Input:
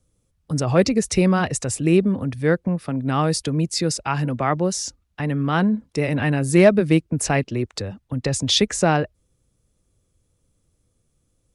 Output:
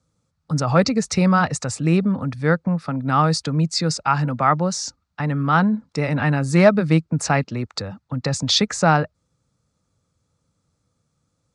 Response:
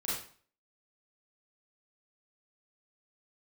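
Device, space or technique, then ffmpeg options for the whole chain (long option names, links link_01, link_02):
car door speaker: -af "highpass=90,equalizer=frequency=160:width_type=q:width=4:gain=4,equalizer=frequency=370:width_type=q:width=4:gain=-8,equalizer=frequency=870:width_type=q:width=4:gain=5,equalizer=frequency=1300:width_type=q:width=4:gain=9,equalizer=frequency=3000:width_type=q:width=4:gain=-5,equalizer=frequency=4400:width_type=q:width=4:gain=5,lowpass=frequency=7800:width=0.5412,lowpass=frequency=7800:width=1.3066"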